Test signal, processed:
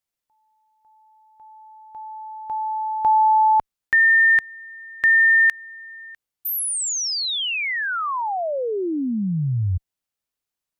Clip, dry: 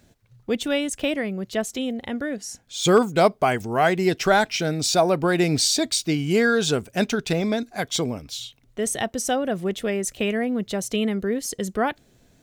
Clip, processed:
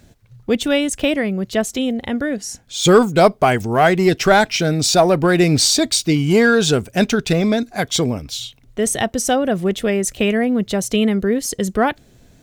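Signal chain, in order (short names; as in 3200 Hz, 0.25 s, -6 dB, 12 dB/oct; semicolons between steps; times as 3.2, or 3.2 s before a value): low shelf 130 Hz +6 dB; in parallel at -5 dB: one-sided clip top -17.5 dBFS; on the sum: gain +2 dB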